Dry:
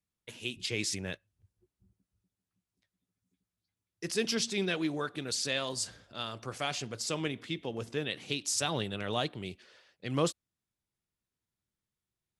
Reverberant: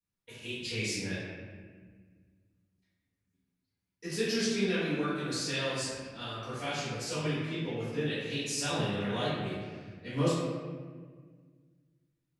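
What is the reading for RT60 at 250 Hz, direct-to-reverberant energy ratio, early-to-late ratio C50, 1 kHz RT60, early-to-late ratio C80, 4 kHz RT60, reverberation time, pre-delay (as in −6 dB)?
2.4 s, −12.0 dB, −1.5 dB, 1.5 s, 1.0 dB, 1.0 s, 1.6 s, 3 ms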